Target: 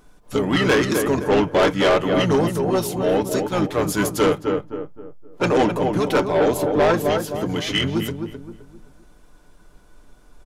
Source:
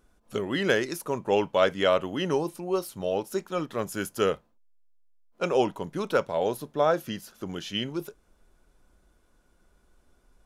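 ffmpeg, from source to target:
-filter_complex "[0:a]aecho=1:1:6.7:0.5,acontrast=24,asplit=2[a][b];[b]adelay=260,lowpass=f=1.5k:p=1,volume=-7dB,asplit=2[c][d];[d]adelay=260,lowpass=f=1.5k:p=1,volume=0.36,asplit=2[e][f];[f]adelay=260,lowpass=f=1.5k:p=1,volume=0.36,asplit=2[g][h];[h]adelay=260,lowpass=f=1.5k:p=1,volume=0.36[i];[a][c][e][g][i]amix=inputs=5:normalize=0,asplit=2[j][k];[k]asetrate=29433,aresample=44100,atempo=1.49831,volume=-5dB[l];[j][l]amix=inputs=2:normalize=0,asoftclip=type=tanh:threshold=-16.5dB,volume=4.5dB"

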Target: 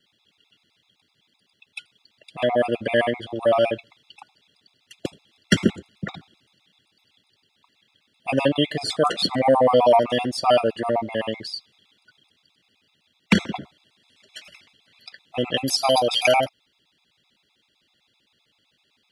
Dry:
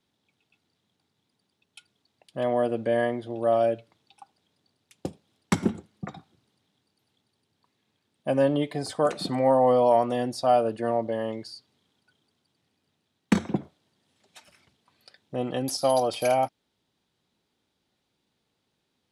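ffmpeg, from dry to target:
-af "equalizer=f=2.9k:t=o:w=1.7:g=13,afftfilt=real='re*gt(sin(2*PI*7.8*pts/sr)*(1-2*mod(floor(b*sr/1024/680),2)),0)':imag='im*gt(sin(2*PI*7.8*pts/sr)*(1-2*mod(floor(b*sr/1024/680),2)),0)':win_size=1024:overlap=0.75,volume=5.5dB"

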